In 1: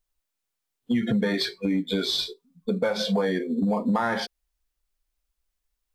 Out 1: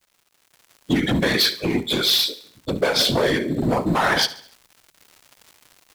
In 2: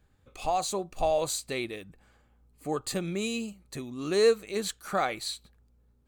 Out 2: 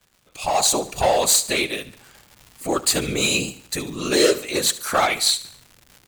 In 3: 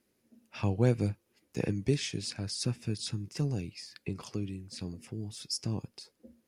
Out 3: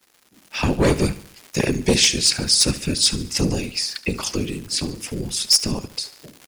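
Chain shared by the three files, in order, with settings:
high-shelf EQ 2,200 Hz +10 dB
gain into a clipping stage and back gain 20.5 dB
random phases in short frames
repeating echo 72 ms, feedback 46%, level −17 dB
surface crackle 280 per second −44 dBFS
low-shelf EQ 210 Hz −5.5 dB
automatic gain control gain up to 12 dB
loudness normalisation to −20 LKFS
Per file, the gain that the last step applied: −4.0, −1.5, +1.5 decibels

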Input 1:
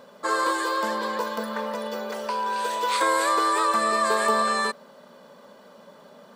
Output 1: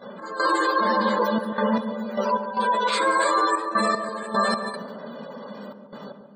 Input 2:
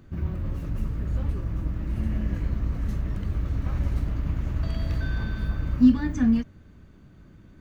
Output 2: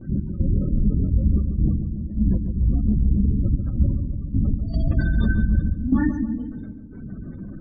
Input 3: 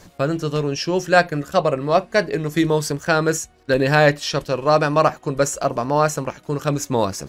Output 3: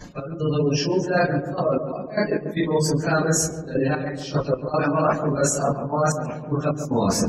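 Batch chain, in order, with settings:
random phases in long frames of 100 ms
gate on every frequency bin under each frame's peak −25 dB strong
parametric band 210 Hz +7 dB 0.66 octaves
reversed playback
downward compressor 6 to 1, threshold −28 dBFS
reversed playback
gate pattern "x.xxxxx.x.." 76 BPM −12 dB
noise gate −52 dBFS, range −9 dB
on a send: feedback echo with a low-pass in the loop 141 ms, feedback 66%, low-pass 950 Hz, level −7.5 dB
on the sum: loudness normalisation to −23 LKFS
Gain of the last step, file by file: +9.5, +12.0, +9.0 decibels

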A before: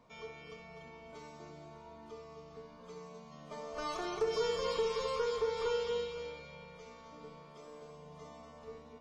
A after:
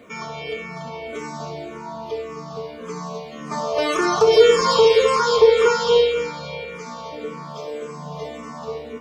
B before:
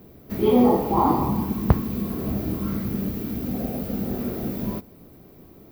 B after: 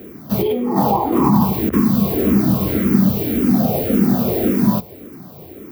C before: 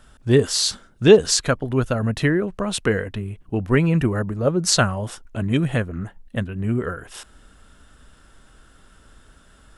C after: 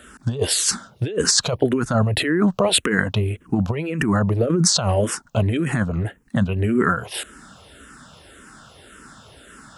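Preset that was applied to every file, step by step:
compressor whose output falls as the input rises −24 dBFS, ratio −1
high-pass filter 110 Hz 12 dB per octave
frequency shifter mixed with the dry sound −1.8 Hz
normalise the peak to −1.5 dBFS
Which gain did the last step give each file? +22.5, +13.0, +8.5 decibels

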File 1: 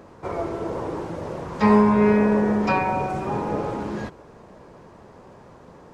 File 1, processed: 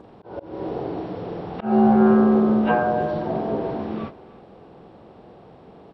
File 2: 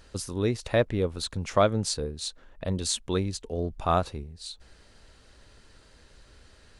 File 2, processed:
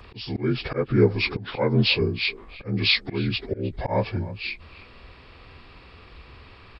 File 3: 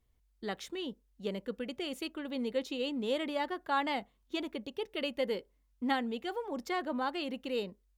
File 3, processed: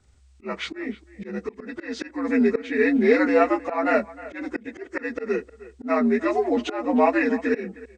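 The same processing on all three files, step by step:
partials spread apart or drawn together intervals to 81%
volume swells 257 ms
far-end echo of a speakerphone 310 ms, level −17 dB
normalise the peak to −6 dBFS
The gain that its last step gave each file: +3.0, +10.5, +17.0 decibels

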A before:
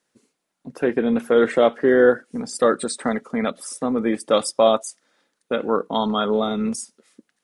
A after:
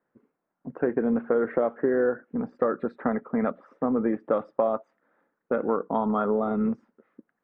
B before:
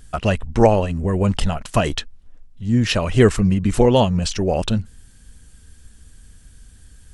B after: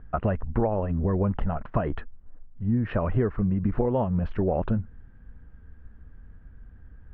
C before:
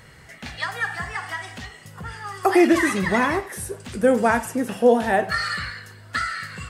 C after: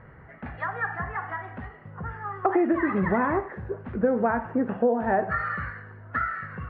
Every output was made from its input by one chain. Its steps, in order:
low-pass filter 1,600 Hz 24 dB per octave
downward compressor 10 to 1, threshold −19 dBFS
loudness normalisation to −27 LKFS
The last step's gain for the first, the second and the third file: −0.5, −1.0, +0.5 decibels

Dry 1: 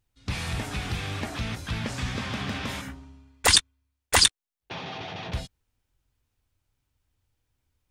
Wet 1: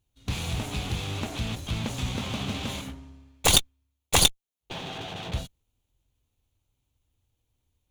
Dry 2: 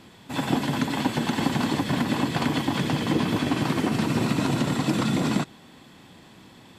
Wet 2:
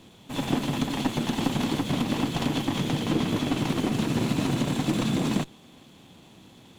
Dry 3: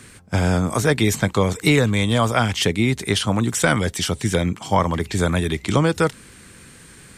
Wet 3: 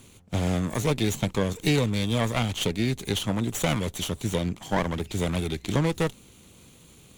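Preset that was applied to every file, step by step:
lower of the sound and its delayed copy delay 0.3 ms
loudness normalisation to −27 LKFS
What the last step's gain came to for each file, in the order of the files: +1.0, −1.5, −6.5 decibels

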